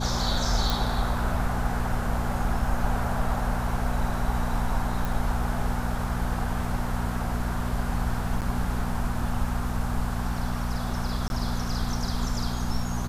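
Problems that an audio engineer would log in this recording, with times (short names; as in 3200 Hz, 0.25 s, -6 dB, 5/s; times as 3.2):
hum 60 Hz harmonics 4 -31 dBFS
0.7 pop
5.05 pop
8.41–8.42 gap 8.4 ms
11.28–11.3 gap 21 ms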